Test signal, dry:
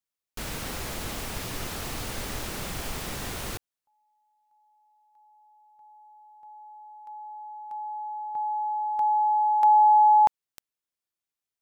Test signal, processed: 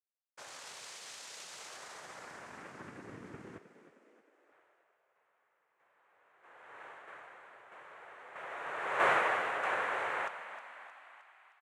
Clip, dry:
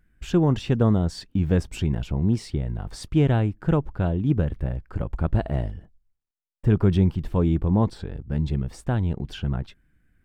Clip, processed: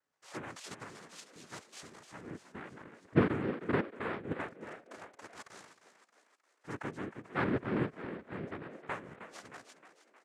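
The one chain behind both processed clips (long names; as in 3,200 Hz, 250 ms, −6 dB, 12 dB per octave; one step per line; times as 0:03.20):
auto-filter band-pass sine 0.22 Hz 320–2,500 Hz
cochlear-implant simulation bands 3
echo with shifted repeats 311 ms, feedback 56%, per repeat +57 Hz, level −12 dB
level −3.5 dB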